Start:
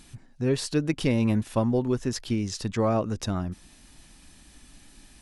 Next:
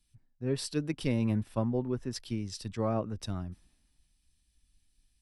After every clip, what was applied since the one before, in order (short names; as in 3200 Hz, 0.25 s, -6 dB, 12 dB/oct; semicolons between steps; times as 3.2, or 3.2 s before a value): low shelf 230 Hz +3.5 dB; notch 6700 Hz, Q 6.1; three-band expander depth 70%; gain -8.5 dB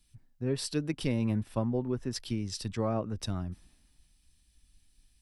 compressor 1.5:1, threshold -41 dBFS, peak gain reduction 6.5 dB; gain +5.5 dB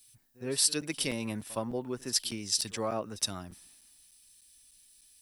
RIAA curve recording; pre-echo 65 ms -20 dB; crackling interface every 0.30 s, samples 256, zero, from 0.81; gain +1.5 dB